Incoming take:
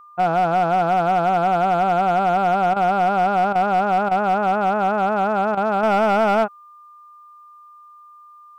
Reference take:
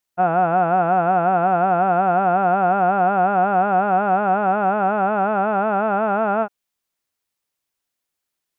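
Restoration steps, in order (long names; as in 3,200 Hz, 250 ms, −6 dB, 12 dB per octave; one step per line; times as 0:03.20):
clipped peaks rebuilt −12 dBFS
notch filter 1,200 Hz, Q 30
repair the gap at 0:02.74/0:03.53/0:04.09/0:05.55, 21 ms
level correction −4 dB, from 0:05.83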